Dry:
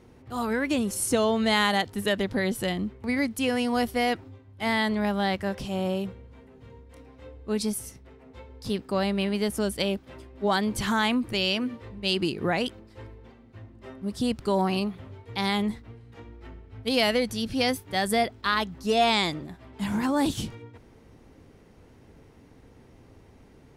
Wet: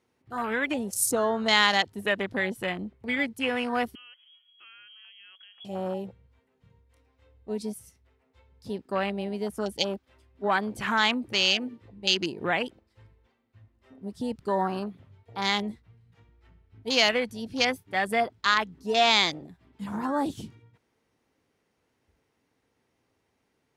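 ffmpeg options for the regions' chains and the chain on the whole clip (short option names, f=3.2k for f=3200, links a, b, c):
-filter_complex "[0:a]asettb=1/sr,asplit=3[a][b][c];[a]atrim=end=3.954[d];[b]atrim=start=3.95:end=5.65,asetpts=PTS-STARTPTS,afade=t=in:d=0.004:c=qsin,afade=t=out:st=1.696:d=0.004:c=qsin,acompressor=threshold=-38dB:ratio=3:attack=3.2:release=140:knee=1:detection=peak,asubboost=boost=11:cutoff=74,lowpass=f=2.9k:t=q:w=0.5098,lowpass=f=2.9k:t=q:w=0.6013,lowpass=f=2.9k:t=q:w=0.9,lowpass=f=2.9k:t=q:w=2.563,afreqshift=-3400[e];[c]atrim=start=5.646[f];[d][e]acrossfade=d=0.004:c1=hsin:c2=qsin[g];[g][f]acrossfade=d=0.004:c1=qsin:c2=hsin,afwtdn=0.0224,highpass=f=140:p=1,tiltshelf=f=750:g=-5"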